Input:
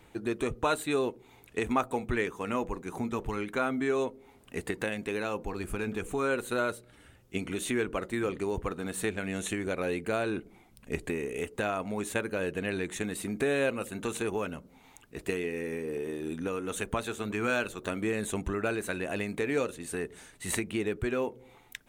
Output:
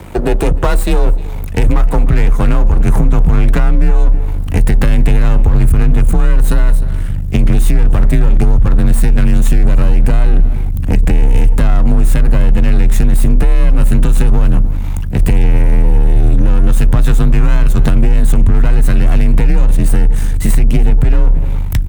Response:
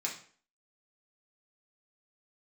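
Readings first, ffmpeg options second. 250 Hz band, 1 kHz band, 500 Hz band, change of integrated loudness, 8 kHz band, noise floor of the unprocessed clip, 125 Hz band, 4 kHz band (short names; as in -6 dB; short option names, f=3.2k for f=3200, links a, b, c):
+15.0 dB, +10.0 dB, +8.0 dB, +19.0 dB, +10.5 dB, -59 dBFS, +28.5 dB, +10.0 dB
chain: -filter_complex "[0:a]aeval=exprs='val(0)+0.00112*(sin(2*PI*50*n/s)+sin(2*PI*2*50*n/s)/2+sin(2*PI*3*50*n/s)/3+sin(2*PI*4*50*n/s)/4+sin(2*PI*5*50*n/s)/5)':c=same,aeval=exprs='max(val(0),0)':c=same,equalizer=f=3.9k:t=o:w=2.9:g=-7.5,acompressor=threshold=-36dB:ratio=5,asplit=2[a][b];[b]aecho=0:1:306:0.0668[c];[a][c]amix=inputs=2:normalize=0,acontrast=21,asubboost=boost=6.5:cutoff=140,asplit=2[d][e];[e]volume=27dB,asoftclip=hard,volume=-27dB,volume=-5dB[f];[d][f]amix=inputs=2:normalize=0,afreqshift=33,alimiter=level_in=20.5dB:limit=-1dB:release=50:level=0:latency=1,volume=-1dB"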